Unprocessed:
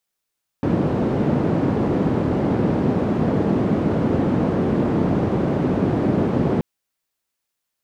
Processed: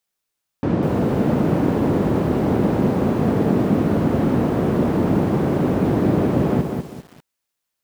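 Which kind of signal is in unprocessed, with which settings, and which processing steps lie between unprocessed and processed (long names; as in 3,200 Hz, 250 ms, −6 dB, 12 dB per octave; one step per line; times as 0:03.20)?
band-limited noise 130–290 Hz, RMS −19.5 dBFS 5.98 s
feedback echo at a low word length 198 ms, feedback 35%, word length 7 bits, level −5 dB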